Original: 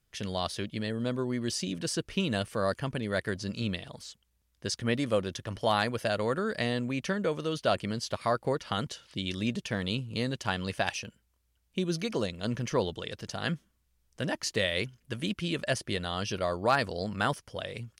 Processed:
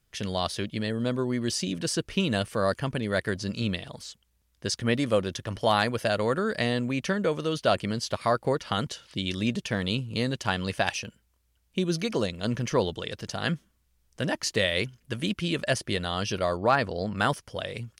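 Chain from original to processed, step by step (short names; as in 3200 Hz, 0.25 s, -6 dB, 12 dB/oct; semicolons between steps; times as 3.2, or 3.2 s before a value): 16.57–17.16 high shelf 4800 Hz -12 dB; gain +3.5 dB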